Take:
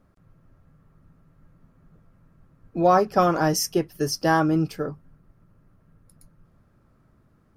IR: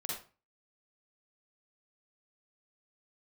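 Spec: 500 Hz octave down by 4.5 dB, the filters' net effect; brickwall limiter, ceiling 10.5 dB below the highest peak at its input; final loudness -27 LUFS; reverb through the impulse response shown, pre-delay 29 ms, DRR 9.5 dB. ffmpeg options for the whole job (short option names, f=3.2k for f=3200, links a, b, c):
-filter_complex "[0:a]equalizer=f=500:t=o:g=-6,alimiter=limit=-19dB:level=0:latency=1,asplit=2[a][b];[1:a]atrim=start_sample=2205,adelay=29[c];[b][c]afir=irnorm=-1:irlink=0,volume=-11dB[d];[a][d]amix=inputs=2:normalize=0,volume=2dB"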